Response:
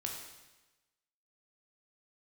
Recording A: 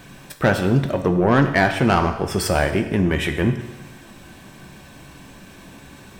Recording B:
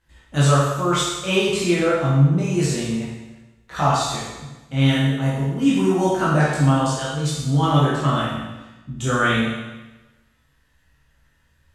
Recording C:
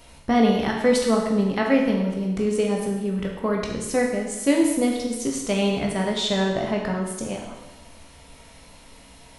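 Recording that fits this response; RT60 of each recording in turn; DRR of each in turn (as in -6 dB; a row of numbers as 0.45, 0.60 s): C; 1.1, 1.1, 1.1 s; 7.0, -8.0, 0.0 dB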